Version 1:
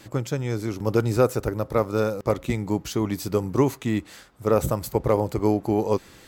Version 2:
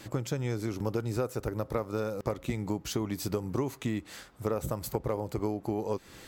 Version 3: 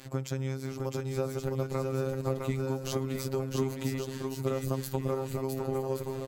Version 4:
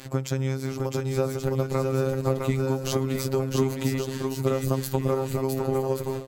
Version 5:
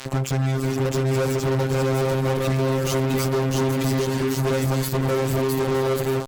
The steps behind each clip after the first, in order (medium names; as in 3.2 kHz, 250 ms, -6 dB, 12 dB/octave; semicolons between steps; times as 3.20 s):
compression, threshold -28 dBFS, peak gain reduction 14 dB
robot voice 133 Hz; on a send: bouncing-ball echo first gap 660 ms, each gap 0.7×, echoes 5
endings held to a fixed fall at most 170 dB/s; trim +6.5 dB
fuzz box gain 32 dB, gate -41 dBFS; trim -5.5 dB